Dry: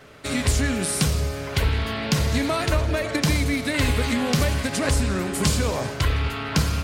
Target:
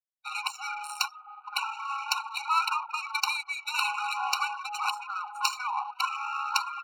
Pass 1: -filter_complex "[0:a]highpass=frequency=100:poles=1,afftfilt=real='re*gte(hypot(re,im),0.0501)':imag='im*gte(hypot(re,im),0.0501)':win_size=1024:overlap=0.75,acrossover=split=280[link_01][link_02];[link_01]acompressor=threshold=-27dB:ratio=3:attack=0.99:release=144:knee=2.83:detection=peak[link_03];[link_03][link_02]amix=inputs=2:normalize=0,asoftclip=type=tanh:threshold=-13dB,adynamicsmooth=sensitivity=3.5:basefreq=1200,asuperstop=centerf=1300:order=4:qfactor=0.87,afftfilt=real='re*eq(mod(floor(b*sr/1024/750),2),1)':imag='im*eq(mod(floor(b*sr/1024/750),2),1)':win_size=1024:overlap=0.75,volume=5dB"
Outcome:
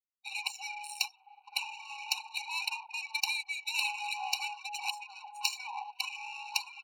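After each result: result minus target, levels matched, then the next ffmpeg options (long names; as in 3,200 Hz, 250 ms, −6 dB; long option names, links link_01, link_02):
soft clipping: distortion +18 dB; 1,000 Hz band −6.0 dB
-filter_complex "[0:a]highpass=frequency=100:poles=1,afftfilt=real='re*gte(hypot(re,im),0.0501)':imag='im*gte(hypot(re,im),0.0501)':win_size=1024:overlap=0.75,acrossover=split=280[link_01][link_02];[link_01]acompressor=threshold=-27dB:ratio=3:attack=0.99:release=144:knee=2.83:detection=peak[link_03];[link_03][link_02]amix=inputs=2:normalize=0,asoftclip=type=tanh:threshold=-2.5dB,adynamicsmooth=sensitivity=3.5:basefreq=1200,asuperstop=centerf=1300:order=4:qfactor=0.87,afftfilt=real='re*eq(mod(floor(b*sr/1024/750),2),1)':imag='im*eq(mod(floor(b*sr/1024/750),2),1)':win_size=1024:overlap=0.75,volume=5dB"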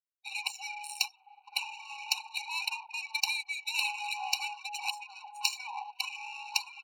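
1,000 Hz band −7.0 dB
-filter_complex "[0:a]highpass=frequency=100:poles=1,afftfilt=real='re*gte(hypot(re,im),0.0501)':imag='im*gte(hypot(re,im),0.0501)':win_size=1024:overlap=0.75,acrossover=split=280[link_01][link_02];[link_01]acompressor=threshold=-27dB:ratio=3:attack=0.99:release=144:knee=2.83:detection=peak[link_03];[link_03][link_02]amix=inputs=2:normalize=0,asoftclip=type=tanh:threshold=-2.5dB,adynamicsmooth=sensitivity=3.5:basefreq=1200,asuperstop=centerf=350:order=4:qfactor=0.87,afftfilt=real='re*eq(mod(floor(b*sr/1024/750),2),1)':imag='im*eq(mod(floor(b*sr/1024/750),2),1)':win_size=1024:overlap=0.75,volume=5dB"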